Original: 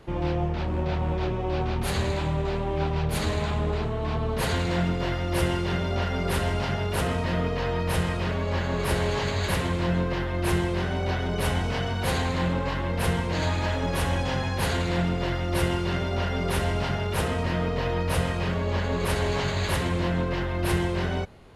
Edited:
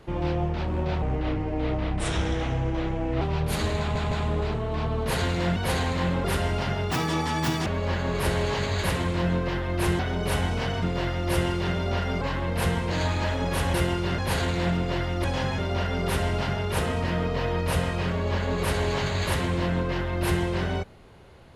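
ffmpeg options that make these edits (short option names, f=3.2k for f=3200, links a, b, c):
-filter_complex "[0:a]asplit=16[a][b][c][d][e][f][g][h][i][j][k][l][m][n][o][p];[a]atrim=end=1.024[q];[b]atrim=start=1.02:end=2.84,asetpts=PTS-STARTPTS,asetrate=36603,aresample=44100,atrim=end_sample=96701,asetpts=PTS-STARTPTS[r];[c]atrim=start=2.836:end=3.582[s];[d]atrim=start=3.418:end=3.582[t];[e]atrim=start=3.418:end=4.872[u];[f]atrim=start=11.948:end=12.632[v];[g]atrim=start=6.258:end=6.934[w];[h]atrim=start=6.93:end=8.31,asetpts=PTS-STARTPTS,asetrate=81144,aresample=44100[x];[i]atrim=start=8.306:end=10.642[y];[j]atrim=start=11.118:end=11.952[z];[k]atrim=start=4.868:end=6.262[aa];[l]atrim=start=12.628:end=14.162[ab];[m]atrim=start=15.558:end=16.002[ac];[n]atrim=start=14.498:end=15.562[ad];[o]atrim=start=14.158:end=14.502[ae];[p]atrim=start=15.998[af];[q][r]acrossfade=d=0.004:c1=hsin:c2=hsin[ag];[ag][s]acrossfade=d=0.004:c1=hsin:c2=hsin[ah];[ah][t]acrossfade=d=0.004:c1=hsin:c2=hsin[ai];[ai][u]acrossfade=d=0.004:c1=hsin:c2=hsin[aj];[aj][v]acrossfade=d=0.004:c1=hsin:c2=hsin[ak];[ak][w]acrossfade=d=0.004:c1=hsin:c2=hsin[al];[al][x]acrossfade=d=0.004:c1=hsin:c2=hsin[am];[am][y]acrossfade=d=0.004:c1=hsin:c2=hsin[an];[an][z]acrossfade=d=0.004:c1=hsin:c2=hsin[ao];[ao][aa]acrossfade=d=0.004:c1=hsin:c2=hsin[ap];[ap][ab]acrossfade=d=0.004:c1=hsin:c2=hsin[aq];[aq][ac]acrossfade=d=0.004:c1=hsin:c2=hsin[ar];[ar][ad]acrossfade=d=0.004:c1=hsin:c2=hsin[as];[as][ae]acrossfade=d=0.004:c1=hsin:c2=hsin[at];[at][af]acrossfade=d=0.004:c1=hsin:c2=hsin"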